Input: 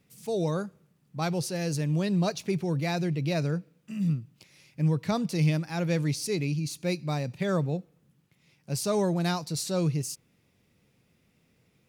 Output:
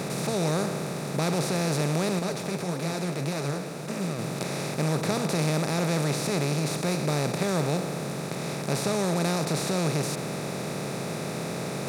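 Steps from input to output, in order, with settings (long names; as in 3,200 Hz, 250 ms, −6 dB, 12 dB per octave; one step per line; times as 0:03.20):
compressor on every frequency bin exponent 0.2
0:02.19–0:04.19: flanger 1.7 Hz, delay 3.2 ms, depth 8.9 ms, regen +39%
level −6 dB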